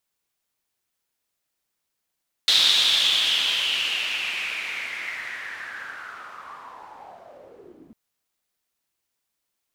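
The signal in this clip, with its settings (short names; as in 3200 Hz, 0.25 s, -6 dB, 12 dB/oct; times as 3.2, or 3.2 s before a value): swept filtered noise pink, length 5.45 s bandpass, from 3800 Hz, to 220 Hz, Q 6.1, linear, gain ramp -32 dB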